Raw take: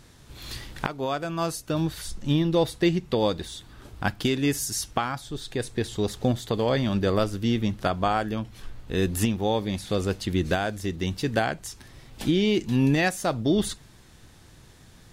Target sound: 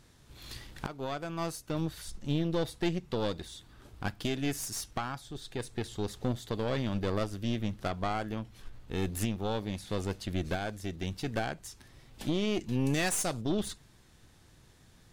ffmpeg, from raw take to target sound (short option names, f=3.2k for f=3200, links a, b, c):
-filter_complex "[0:a]asplit=3[a][b][c];[a]afade=t=out:st=12.85:d=0.02[d];[b]equalizer=f=8.5k:t=o:w=1.7:g=14.5,afade=t=in:st=12.85:d=0.02,afade=t=out:st=13.4:d=0.02[e];[c]afade=t=in:st=13.4:d=0.02[f];[d][e][f]amix=inputs=3:normalize=0,aeval=exprs='(tanh(8.91*val(0)+0.65)-tanh(0.65))/8.91':c=same,volume=-4.5dB"